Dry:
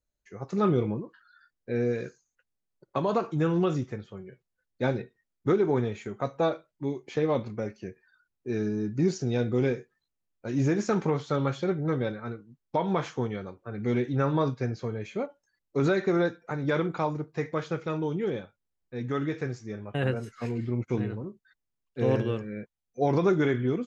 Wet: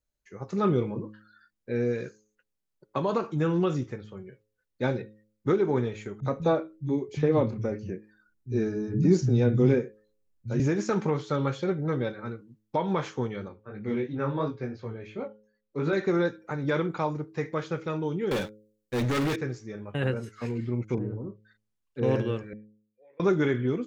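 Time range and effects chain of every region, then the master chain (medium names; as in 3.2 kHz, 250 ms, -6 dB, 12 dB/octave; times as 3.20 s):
6.20–10.60 s: bass shelf 290 Hz +10.5 dB + three bands offset in time lows, highs, mids 30/60 ms, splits 160/3100 Hz
13.48–15.93 s: low-pass 3.9 kHz + chorus 2.9 Hz, delay 18.5 ms, depth 3.4 ms
18.31–19.36 s: waveshaping leveller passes 3 + treble shelf 4 kHz +11 dB + hard clipper -24 dBFS
20.94–22.03 s: low-pass that closes with the level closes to 710 Hz, closed at -29 dBFS + doubling 36 ms -8.5 dB
22.53–23.20 s: cascade formant filter e + differentiator
whole clip: band-stop 700 Hz, Q 13; de-hum 106.4 Hz, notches 5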